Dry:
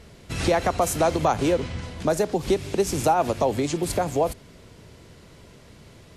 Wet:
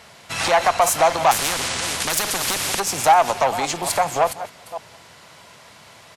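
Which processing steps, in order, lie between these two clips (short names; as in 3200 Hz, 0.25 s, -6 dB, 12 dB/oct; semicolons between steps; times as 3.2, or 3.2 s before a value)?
reverse delay 0.281 s, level -14 dB; HPF 110 Hz 12 dB/oct; added harmonics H 5 -20 dB, 6 -18 dB, 8 -29 dB, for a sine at -9.5 dBFS; resonant low shelf 550 Hz -11.5 dB, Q 1.5; speakerphone echo 0.19 s, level -21 dB; 1.31–2.8 spectral compressor 4:1; gain +4.5 dB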